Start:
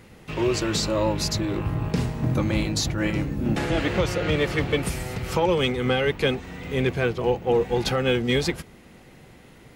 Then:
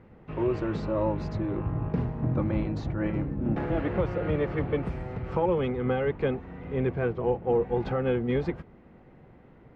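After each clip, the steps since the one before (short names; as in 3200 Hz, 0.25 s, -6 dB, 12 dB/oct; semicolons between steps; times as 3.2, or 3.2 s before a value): LPF 1300 Hz 12 dB/oct; gain -3.5 dB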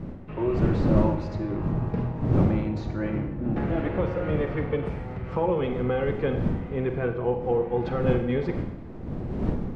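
wind noise 220 Hz -31 dBFS; Schroeder reverb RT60 0.86 s, combs from 33 ms, DRR 6.5 dB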